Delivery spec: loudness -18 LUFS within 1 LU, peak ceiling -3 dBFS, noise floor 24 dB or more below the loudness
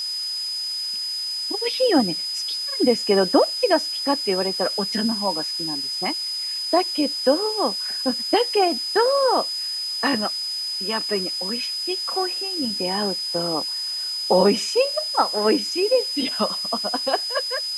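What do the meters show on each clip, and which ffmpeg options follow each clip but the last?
steady tone 5000 Hz; tone level -25 dBFS; noise floor -28 dBFS; noise floor target -46 dBFS; loudness -21.5 LUFS; peak -5.0 dBFS; loudness target -18.0 LUFS
-> -af "bandreject=f=5k:w=30"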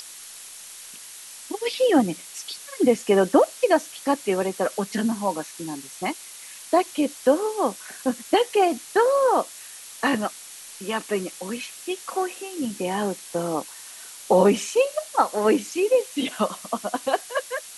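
steady tone none; noise floor -42 dBFS; noise floor target -48 dBFS
-> -af "afftdn=nr=6:nf=-42"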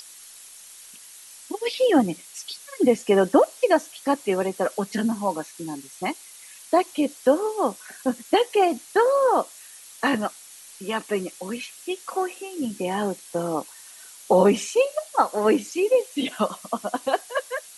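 noise floor -46 dBFS; noise floor target -48 dBFS
-> -af "afftdn=nr=6:nf=-46"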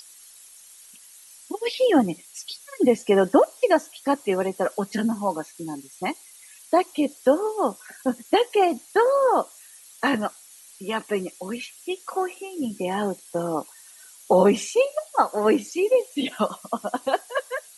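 noise floor -49 dBFS; loudness -24.0 LUFS; peak -6.0 dBFS; loudness target -18.0 LUFS
-> -af "volume=6dB,alimiter=limit=-3dB:level=0:latency=1"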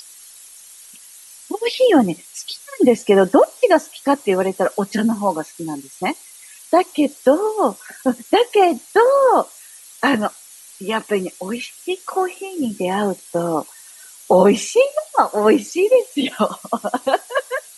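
loudness -18.0 LUFS; peak -3.0 dBFS; noise floor -43 dBFS

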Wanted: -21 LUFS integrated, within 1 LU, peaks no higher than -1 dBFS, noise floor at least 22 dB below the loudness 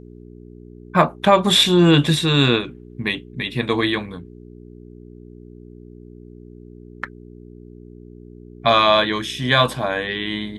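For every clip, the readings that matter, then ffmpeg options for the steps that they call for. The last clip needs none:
hum 60 Hz; harmonics up to 420 Hz; hum level -42 dBFS; loudness -18.0 LUFS; peak -1.5 dBFS; loudness target -21.0 LUFS
-> -af "bandreject=f=60:t=h:w=4,bandreject=f=120:t=h:w=4,bandreject=f=180:t=h:w=4,bandreject=f=240:t=h:w=4,bandreject=f=300:t=h:w=4,bandreject=f=360:t=h:w=4,bandreject=f=420:t=h:w=4"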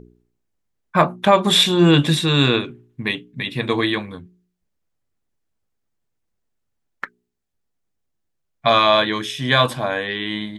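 hum none; loudness -18.0 LUFS; peak -1.0 dBFS; loudness target -21.0 LUFS
-> -af "volume=-3dB"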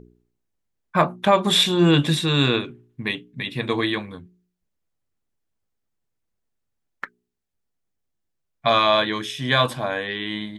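loudness -21.0 LUFS; peak -4.0 dBFS; noise floor -78 dBFS

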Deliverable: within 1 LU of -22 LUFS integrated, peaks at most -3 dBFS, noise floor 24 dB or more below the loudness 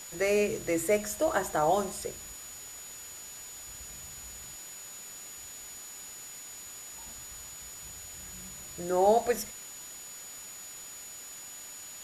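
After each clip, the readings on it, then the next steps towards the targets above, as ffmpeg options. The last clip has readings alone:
steady tone 6900 Hz; tone level -44 dBFS; noise floor -45 dBFS; noise floor target -58 dBFS; loudness -34.0 LUFS; peak -13.0 dBFS; loudness target -22.0 LUFS
-> -af "bandreject=f=6.9k:w=30"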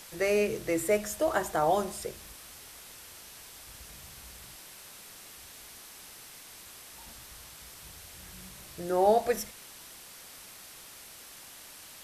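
steady tone none; noise floor -49 dBFS; noise floor target -53 dBFS
-> -af "afftdn=nr=6:nf=-49"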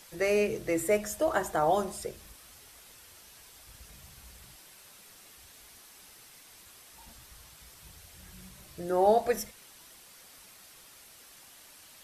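noise floor -54 dBFS; loudness -29.0 LUFS; peak -13.0 dBFS; loudness target -22.0 LUFS
-> -af "volume=7dB"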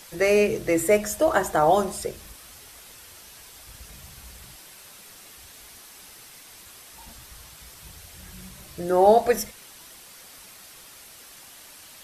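loudness -22.0 LUFS; peak -6.0 dBFS; noise floor -47 dBFS

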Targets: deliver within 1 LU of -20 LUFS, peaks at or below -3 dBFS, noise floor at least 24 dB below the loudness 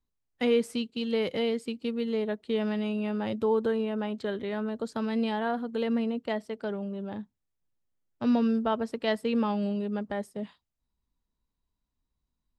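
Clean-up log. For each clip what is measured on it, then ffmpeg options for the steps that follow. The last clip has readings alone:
loudness -30.0 LUFS; peak -15.0 dBFS; loudness target -20.0 LUFS
-> -af "volume=10dB"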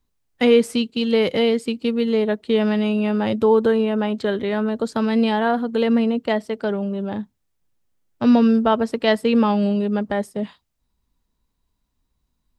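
loudness -20.0 LUFS; peak -5.0 dBFS; noise floor -74 dBFS

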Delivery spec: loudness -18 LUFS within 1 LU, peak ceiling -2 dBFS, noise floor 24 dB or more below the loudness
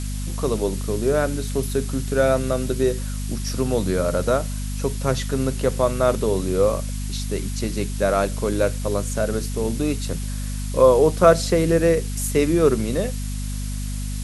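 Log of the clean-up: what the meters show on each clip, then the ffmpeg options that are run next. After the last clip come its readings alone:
hum 50 Hz; harmonics up to 250 Hz; hum level -25 dBFS; noise floor -27 dBFS; noise floor target -46 dBFS; loudness -22.0 LUFS; peak -1.5 dBFS; loudness target -18.0 LUFS
-> -af "bandreject=f=50:t=h:w=6,bandreject=f=100:t=h:w=6,bandreject=f=150:t=h:w=6,bandreject=f=200:t=h:w=6,bandreject=f=250:t=h:w=6"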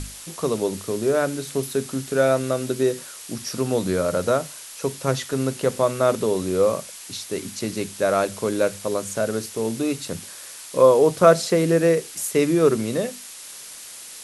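hum none; noise floor -40 dBFS; noise floor target -46 dBFS
-> -af "afftdn=nr=6:nf=-40"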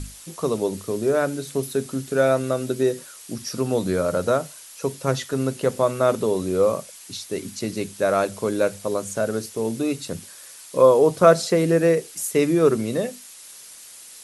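noise floor -43 dBFS; noise floor target -47 dBFS
-> -af "afftdn=nr=6:nf=-43"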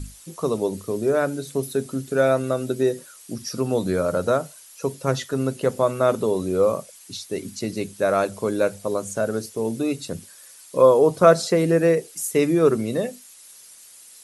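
noise floor -47 dBFS; loudness -22.5 LUFS; peak -2.0 dBFS; loudness target -18.0 LUFS
-> -af "volume=4.5dB,alimiter=limit=-2dB:level=0:latency=1"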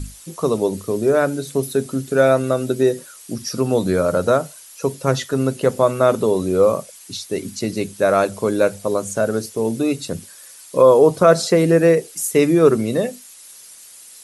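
loudness -18.0 LUFS; peak -2.0 dBFS; noise floor -42 dBFS

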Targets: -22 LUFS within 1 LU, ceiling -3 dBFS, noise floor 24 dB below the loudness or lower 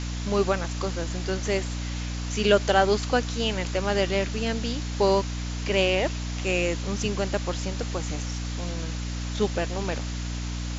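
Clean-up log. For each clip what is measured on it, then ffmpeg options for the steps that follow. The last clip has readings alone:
hum 60 Hz; harmonics up to 300 Hz; hum level -29 dBFS; noise floor -31 dBFS; noise floor target -51 dBFS; loudness -26.5 LUFS; peak -5.0 dBFS; loudness target -22.0 LUFS
-> -af "bandreject=f=60:t=h:w=6,bandreject=f=120:t=h:w=6,bandreject=f=180:t=h:w=6,bandreject=f=240:t=h:w=6,bandreject=f=300:t=h:w=6"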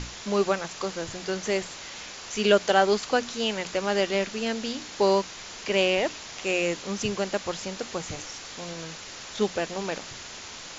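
hum none; noise floor -41 dBFS; noise floor target -52 dBFS
-> -af "afftdn=nr=11:nf=-41"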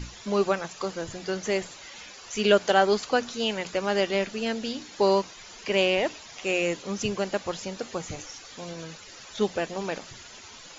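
noise floor -46 dBFS; noise floor target -51 dBFS
-> -af "afftdn=nr=6:nf=-46"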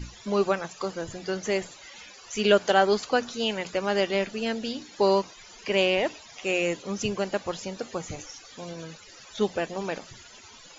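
noise floor -49 dBFS; noise floor target -51 dBFS
-> -af "afftdn=nr=6:nf=-49"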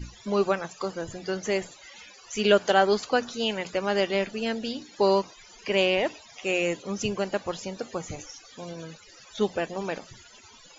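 noise floor -52 dBFS; loudness -27.0 LUFS; peak -6.0 dBFS; loudness target -22.0 LUFS
-> -af "volume=5dB,alimiter=limit=-3dB:level=0:latency=1"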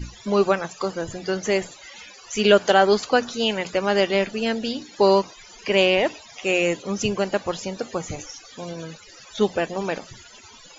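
loudness -22.0 LUFS; peak -3.0 dBFS; noise floor -47 dBFS

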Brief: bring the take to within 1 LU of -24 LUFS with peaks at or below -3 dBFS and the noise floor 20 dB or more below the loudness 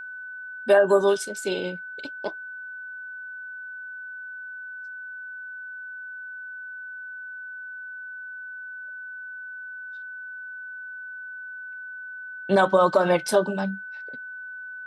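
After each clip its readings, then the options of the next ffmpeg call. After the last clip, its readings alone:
steady tone 1500 Hz; tone level -35 dBFS; loudness -28.5 LUFS; peak -6.5 dBFS; loudness target -24.0 LUFS
-> -af "bandreject=f=1.5k:w=30"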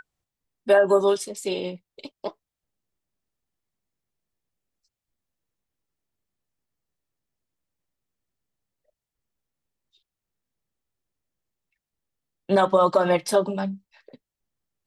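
steady tone none; loudness -22.0 LUFS; peak -6.5 dBFS; loudness target -24.0 LUFS
-> -af "volume=-2dB"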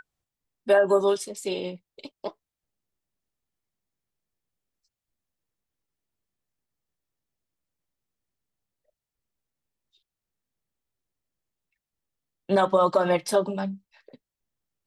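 loudness -24.0 LUFS; peak -8.5 dBFS; noise floor -90 dBFS

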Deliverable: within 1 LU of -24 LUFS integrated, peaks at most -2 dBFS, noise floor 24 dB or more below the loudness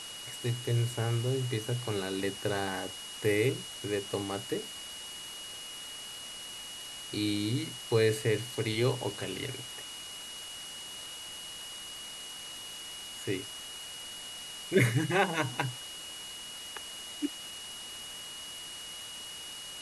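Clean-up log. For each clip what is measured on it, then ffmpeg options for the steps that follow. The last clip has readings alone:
steady tone 2900 Hz; tone level -43 dBFS; noise floor -44 dBFS; noise floor target -59 dBFS; loudness -34.5 LUFS; peak -12.0 dBFS; loudness target -24.0 LUFS
-> -af "bandreject=f=2.9k:w=30"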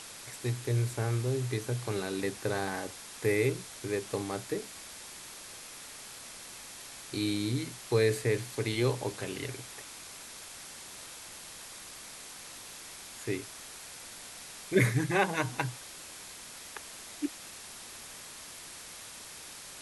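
steady tone none; noise floor -47 dBFS; noise floor target -59 dBFS
-> -af "afftdn=nr=12:nf=-47"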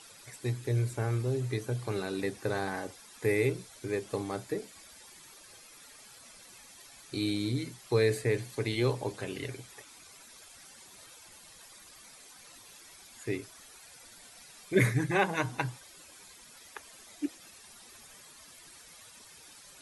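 noise floor -54 dBFS; noise floor target -57 dBFS
-> -af "afftdn=nr=6:nf=-54"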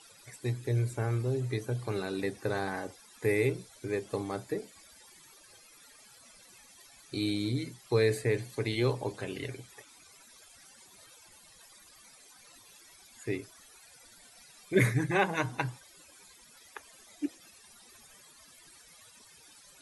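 noise floor -57 dBFS; loudness -32.5 LUFS; peak -12.0 dBFS; loudness target -24.0 LUFS
-> -af "volume=8.5dB"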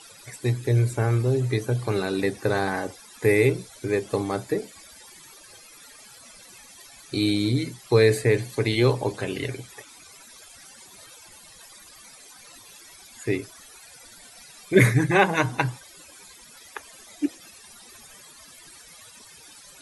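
loudness -24.0 LUFS; peak -3.5 dBFS; noise floor -49 dBFS

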